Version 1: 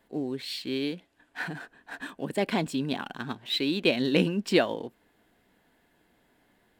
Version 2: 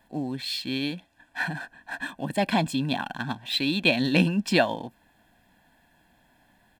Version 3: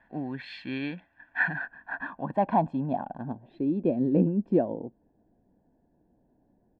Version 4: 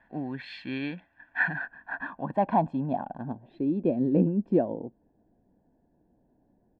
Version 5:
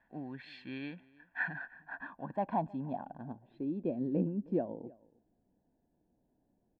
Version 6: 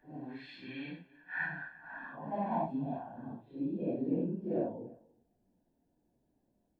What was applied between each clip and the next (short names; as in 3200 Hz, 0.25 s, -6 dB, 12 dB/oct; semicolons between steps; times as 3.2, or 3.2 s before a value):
comb 1.2 ms, depth 69%; gain +2.5 dB
low-pass sweep 1800 Hz -> 430 Hz, 1.53–3.61; gain -3.5 dB
nothing audible
outdoor echo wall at 54 m, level -23 dB; gain -9 dB
phase scrambler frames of 0.2 s